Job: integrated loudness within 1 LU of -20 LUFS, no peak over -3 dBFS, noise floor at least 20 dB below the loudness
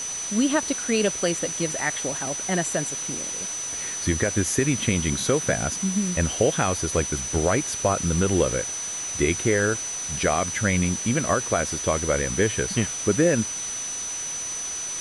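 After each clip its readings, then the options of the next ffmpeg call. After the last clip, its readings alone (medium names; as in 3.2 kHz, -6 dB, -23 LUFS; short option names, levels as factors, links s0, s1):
steady tone 6 kHz; tone level -29 dBFS; noise floor -31 dBFS; noise floor target -44 dBFS; loudness -24.0 LUFS; peak level -8.5 dBFS; loudness target -20.0 LUFS
-> -af "bandreject=f=6000:w=30"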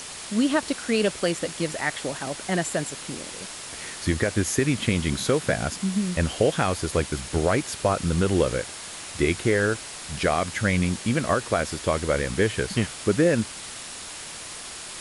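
steady tone not found; noise floor -38 dBFS; noise floor target -46 dBFS
-> -af "afftdn=nr=8:nf=-38"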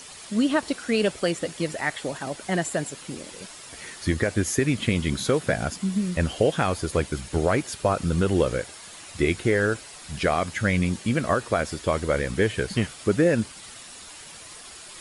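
noise floor -43 dBFS; noise floor target -45 dBFS
-> -af "afftdn=nr=6:nf=-43"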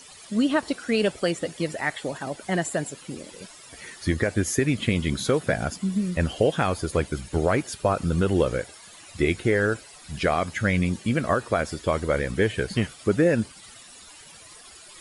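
noise floor -47 dBFS; loudness -25.5 LUFS; peak level -9.5 dBFS; loudness target -20.0 LUFS
-> -af "volume=1.88"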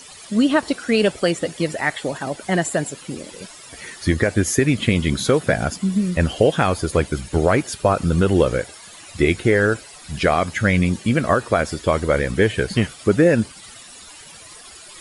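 loudness -20.0 LUFS; peak level -4.0 dBFS; noise floor -42 dBFS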